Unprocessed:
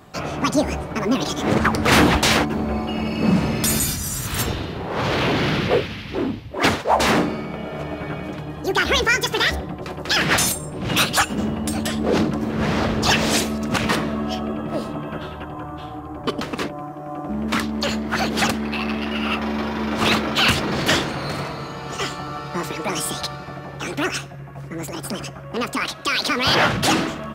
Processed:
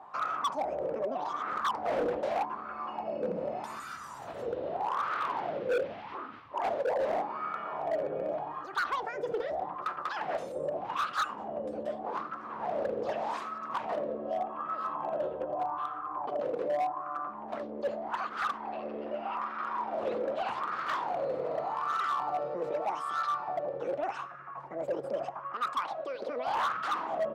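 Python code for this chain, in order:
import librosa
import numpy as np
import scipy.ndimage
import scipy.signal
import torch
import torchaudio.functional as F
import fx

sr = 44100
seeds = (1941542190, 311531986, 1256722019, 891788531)

p1 = fx.over_compress(x, sr, threshold_db=-30.0, ratio=-1.0)
p2 = x + (p1 * librosa.db_to_amplitude(1.5))
p3 = fx.wah_lfo(p2, sr, hz=0.83, low_hz=500.0, high_hz=1300.0, q=8.3)
y = np.clip(10.0 ** (25.5 / 20.0) * p3, -1.0, 1.0) / 10.0 ** (25.5 / 20.0)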